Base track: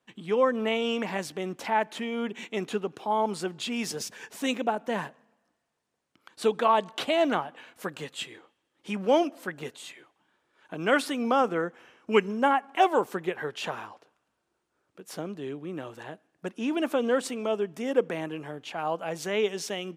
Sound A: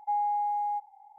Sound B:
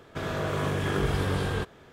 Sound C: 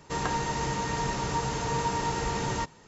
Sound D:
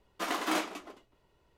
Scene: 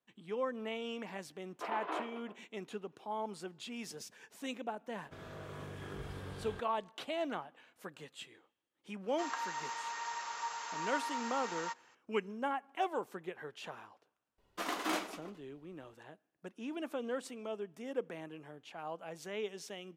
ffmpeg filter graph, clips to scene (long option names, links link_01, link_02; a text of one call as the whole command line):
ffmpeg -i bed.wav -i cue0.wav -i cue1.wav -i cue2.wav -i cue3.wav -filter_complex "[4:a]asplit=2[link_01][link_02];[0:a]volume=-13dB[link_03];[link_01]highpass=frequency=350:width=0.5412,highpass=frequency=350:width=1.3066,equalizer=frequency=430:width_type=q:width=4:gain=8,equalizer=frequency=670:width_type=q:width=4:gain=4,equalizer=frequency=980:width_type=q:width=4:gain=6,equalizer=frequency=2000:width_type=q:width=4:gain=-4,lowpass=frequency=2700:width=0.5412,lowpass=frequency=2700:width=1.3066[link_04];[3:a]highpass=frequency=1100:width_type=q:width=1.6[link_05];[link_02]aecho=1:1:90:0.141[link_06];[link_04]atrim=end=1.57,asetpts=PTS-STARTPTS,volume=-9.5dB,afade=type=in:duration=0.004:curve=hsin,afade=type=out:start_time=1.566:duration=0.004:curve=hsin,adelay=1410[link_07];[2:a]atrim=end=1.92,asetpts=PTS-STARTPTS,volume=-18dB,afade=type=in:duration=0.004:curve=hsin,afade=type=out:start_time=1.916:duration=0.004:curve=hsin,adelay=4960[link_08];[link_05]atrim=end=2.87,asetpts=PTS-STARTPTS,volume=-10dB,afade=type=in:duration=0.004:curve=hsin,afade=type=out:start_time=2.866:duration=0.004:curve=hsin,adelay=9080[link_09];[link_06]atrim=end=1.57,asetpts=PTS-STARTPTS,volume=-4.5dB,afade=type=in:duration=0.004:curve=hsin,afade=type=out:start_time=1.566:duration=0.004:curve=hsin,adelay=14380[link_10];[link_03][link_07][link_08][link_09][link_10]amix=inputs=5:normalize=0" out.wav